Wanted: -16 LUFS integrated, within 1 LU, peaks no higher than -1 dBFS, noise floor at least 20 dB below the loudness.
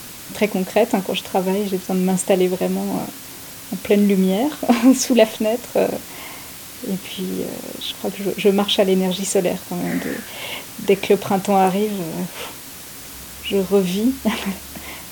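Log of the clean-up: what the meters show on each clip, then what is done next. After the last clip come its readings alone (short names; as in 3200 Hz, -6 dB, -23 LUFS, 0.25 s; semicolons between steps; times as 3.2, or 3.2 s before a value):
noise floor -36 dBFS; noise floor target -40 dBFS; loudness -20.0 LUFS; peak -1.0 dBFS; loudness target -16.0 LUFS
-> noise print and reduce 6 dB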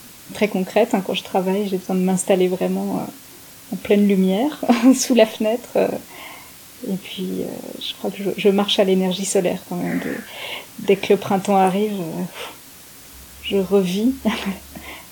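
noise floor -42 dBFS; loudness -20.0 LUFS; peak -1.5 dBFS; loudness target -16.0 LUFS
-> gain +4 dB; limiter -1 dBFS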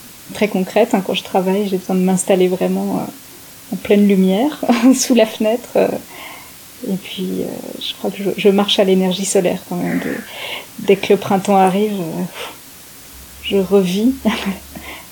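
loudness -16.5 LUFS; peak -1.0 dBFS; noise floor -38 dBFS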